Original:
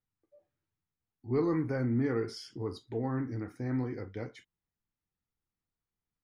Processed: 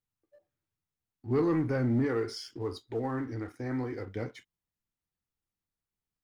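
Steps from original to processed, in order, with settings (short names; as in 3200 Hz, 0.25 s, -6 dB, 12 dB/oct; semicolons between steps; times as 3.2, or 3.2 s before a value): 2.04–4.07 bell 170 Hz -14 dB 0.77 oct; sample leveller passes 1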